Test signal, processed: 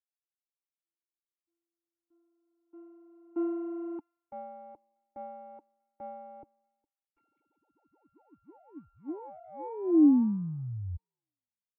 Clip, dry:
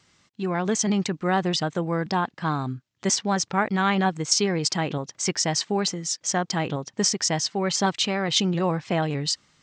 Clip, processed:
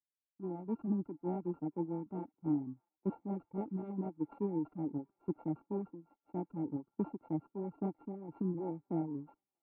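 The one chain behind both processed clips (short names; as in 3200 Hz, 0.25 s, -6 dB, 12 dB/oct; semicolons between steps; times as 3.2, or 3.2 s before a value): sample sorter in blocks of 32 samples; reverb removal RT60 1.2 s; vocal tract filter u; on a send: thin delay 0.641 s, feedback 64%, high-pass 1700 Hz, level -18 dB; on the sum: three-band expander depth 100%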